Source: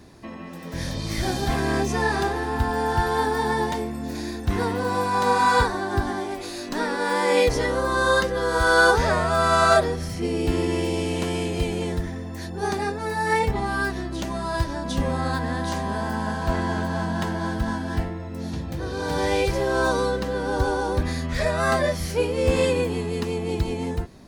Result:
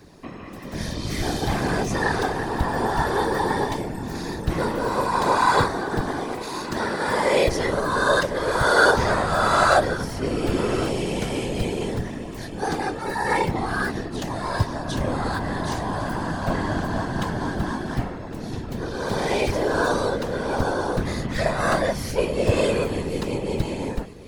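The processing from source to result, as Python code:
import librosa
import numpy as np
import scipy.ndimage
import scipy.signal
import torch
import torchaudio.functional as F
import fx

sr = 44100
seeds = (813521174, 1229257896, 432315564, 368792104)

y = x + 10.0 ** (-16.0 / 20.0) * np.pad(x, (int(1107 * sr / 1000.0), 0))[:len(x)]
y = fx.whisperise(y, sr, seeds[0])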